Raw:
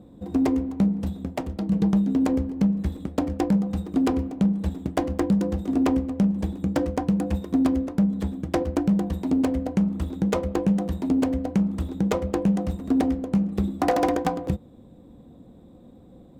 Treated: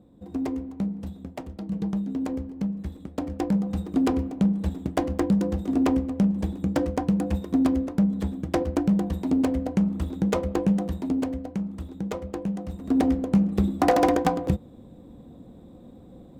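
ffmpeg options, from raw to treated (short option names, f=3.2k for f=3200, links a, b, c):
-af "volume=9dB,afade=t=in:st=3.07:d=0.74:silence=0.473151,afade=t=out:st=10.71:d=0.79:silence=0.446684,afade=t=in:st=12.68:d=0.44:silence=0.334965"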